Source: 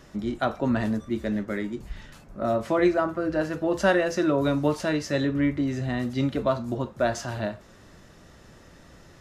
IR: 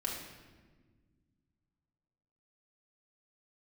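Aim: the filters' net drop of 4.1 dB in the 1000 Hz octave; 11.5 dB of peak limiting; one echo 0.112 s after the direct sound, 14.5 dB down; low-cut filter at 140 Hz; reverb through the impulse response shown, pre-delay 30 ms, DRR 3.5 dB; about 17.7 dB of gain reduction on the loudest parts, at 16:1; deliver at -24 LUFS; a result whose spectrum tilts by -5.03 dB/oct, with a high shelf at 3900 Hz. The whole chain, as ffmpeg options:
-filter_complex "[0:a]highpass=140,equalizer=f=1k:t=o:g=-7,highshelf=f=3.9k:g=7,acompressor=threshold=-35dB:ratio=16,alimiter=level_in=10.5dB:limit=-24dB:level=0:latency=1,volume=-10.5dB,aecho=1:1:112:0.188,asplit=2[a][b];[1:a]atrim=start_sample=2205,adelay=30[c];[b][c]afir=irnorm=-1:irlink=0,volume=-6dB[d];[a][d]amix=inputs=2:normalize=0,volume=17.5dB"

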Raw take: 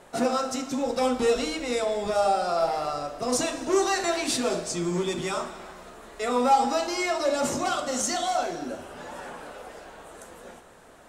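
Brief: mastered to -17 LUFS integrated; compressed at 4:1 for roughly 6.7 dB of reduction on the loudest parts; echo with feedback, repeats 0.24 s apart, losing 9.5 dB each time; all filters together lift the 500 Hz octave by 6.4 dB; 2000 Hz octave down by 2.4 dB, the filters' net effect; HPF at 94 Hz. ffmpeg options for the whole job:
-af "highpass=94,equalizer=f=500:t=o:g=8,equalizer=f=2k:t=o:g=-3.5,acompressor=threshold=-20dB:ratio=4,aecho=1:1:240|480|720|960:0.335|0.111|0.0365|0.012,volume=8dB"

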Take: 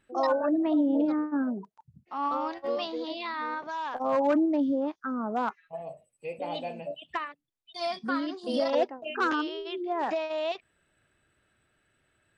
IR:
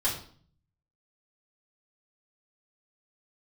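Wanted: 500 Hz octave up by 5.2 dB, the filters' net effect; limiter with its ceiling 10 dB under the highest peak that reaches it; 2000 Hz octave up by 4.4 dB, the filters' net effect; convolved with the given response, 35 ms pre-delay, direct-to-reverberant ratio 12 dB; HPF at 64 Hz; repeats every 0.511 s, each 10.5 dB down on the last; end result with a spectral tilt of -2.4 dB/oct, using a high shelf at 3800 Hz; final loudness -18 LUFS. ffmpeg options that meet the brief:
-filter_complex "[0:a]highpass=64,equalizer=f=500:t=o:g=6,equalizer=f=2k:t=o:g=7,highshelf=f=3.8k:g=-5,alimiter=limit=-20.5dB:level=0:latency=1,aecho=1:1:511|1022|1533:0.299|0.0896|0.0269,asplit=2[a][b];[1:a]atrim=start_sample=2205,adelay=35[c];[b][c]afir=irnorm=-1:irlink=0,volume=-20dB[d];[a][d]amix=inputs=2:normalize=0,volume=11.5dB"

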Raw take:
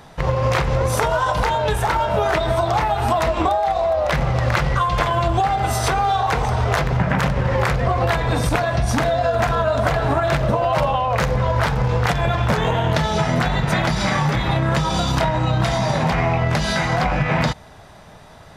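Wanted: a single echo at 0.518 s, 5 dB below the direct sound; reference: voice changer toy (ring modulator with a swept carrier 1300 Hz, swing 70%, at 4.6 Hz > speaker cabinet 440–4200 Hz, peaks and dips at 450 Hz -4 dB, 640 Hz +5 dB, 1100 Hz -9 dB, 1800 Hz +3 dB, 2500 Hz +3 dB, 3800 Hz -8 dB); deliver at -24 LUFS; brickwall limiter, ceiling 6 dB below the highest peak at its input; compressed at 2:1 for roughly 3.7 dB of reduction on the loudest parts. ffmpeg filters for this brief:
-af "acompressor=threshold=-21dB:ratio=2,alimiter=limit=-14dB:level=0:latency=1,aecho=1:1:518:0.562,aeval=exprs='val(0)*sin(2*PI*1300*n/s+1300*0.7/4.6*sin(2*PI*4.6*n/s))':c=same,highpass=440,equalizer=f=450:t=q:w=4:g=-4,equalizer=f=640:t=q:w=4:g=5,equalizer=f=1.1k:t=q:w=4:g=-9,equalizer=f=1.8k:t=q:w=4:g=3,equalizer=f=2.5k:t=q:w=4:g=3,equalizer=f=3.8k:t=q:w=4:g=-8,lowpass=f=4.2k:w=0.5412,lowpass=f=4.2k:w=1.3066"

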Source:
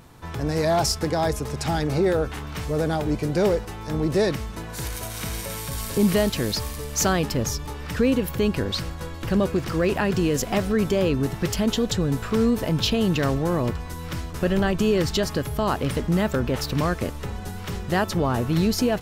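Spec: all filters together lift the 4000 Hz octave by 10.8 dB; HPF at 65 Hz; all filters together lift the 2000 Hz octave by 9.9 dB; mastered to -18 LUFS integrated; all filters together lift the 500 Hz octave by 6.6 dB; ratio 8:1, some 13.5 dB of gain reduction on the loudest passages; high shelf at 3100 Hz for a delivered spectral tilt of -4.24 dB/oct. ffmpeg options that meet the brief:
-af "highpass=65,equalizer=f=500:t=o:g=7.5,equalizer=f=2k:t=o:g=8.5,highshelf=f=3.1k:g=6,equalizer=f=4k:t=o:g=6.5,acompressor=threshold=-25dB:ratio=8,volume=10.5dB"

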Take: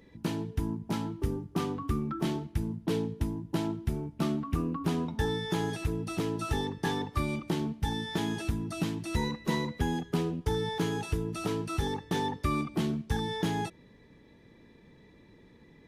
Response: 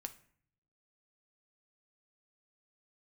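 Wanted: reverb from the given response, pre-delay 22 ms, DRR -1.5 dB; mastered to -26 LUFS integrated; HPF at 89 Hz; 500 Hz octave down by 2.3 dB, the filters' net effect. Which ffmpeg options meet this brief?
-filter_complex "[0:a]highpass=89,equalizer=f=500:t=o:g=-3,asplit=2[a][b];[1:a]atrim=start_sample=2205,adelay=22[c];[b][c]afir=irnorm=-1:irlink=0,volume=5dB[d];[a][d]amix=inputs=2:normalize=0,volume=4dB"

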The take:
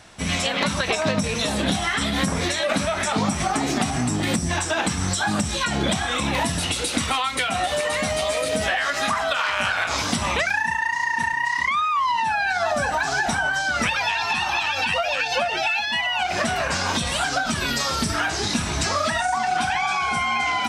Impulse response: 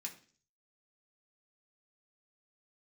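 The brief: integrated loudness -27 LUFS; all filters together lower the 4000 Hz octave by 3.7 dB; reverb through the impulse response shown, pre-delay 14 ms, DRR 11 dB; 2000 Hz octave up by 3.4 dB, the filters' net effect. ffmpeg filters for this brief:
-filter_complex "[0:a]equalizer=f=2k:t=o:g=6,equalizer=f=4k:t=o:g=-7.5,asplit=2[a][b];[1:a]atrim=start_sample=2205,adelay=14[c];[b][c]afir=irnorm=-1:irlink=0,volume=-8.5dB[d];[a][d]amix=inputs=2:normalize=0,volume=-6.5dB"

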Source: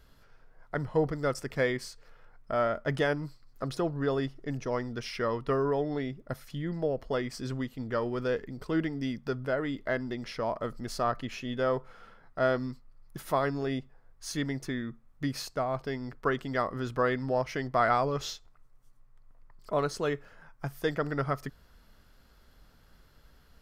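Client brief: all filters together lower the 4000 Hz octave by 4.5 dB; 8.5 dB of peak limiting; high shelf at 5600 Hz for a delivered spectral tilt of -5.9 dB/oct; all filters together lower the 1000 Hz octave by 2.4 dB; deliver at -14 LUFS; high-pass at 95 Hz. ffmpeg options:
-af "highpass=95,equalizer=f=1k:t=o:g=-3,equalizer=f=4k:t=o:g=-3,highshelf=f=5.6k:g=-6.5,volume=21dB,alimiter=limit=-1.5dB:level=0:latency=1"

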